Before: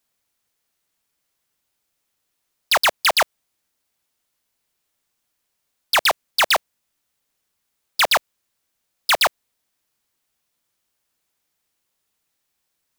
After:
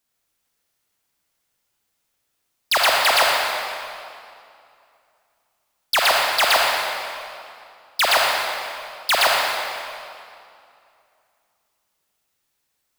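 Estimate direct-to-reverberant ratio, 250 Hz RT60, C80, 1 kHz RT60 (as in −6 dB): −2.0 dB, 2.6 s, 0.5 dB, 2.5 s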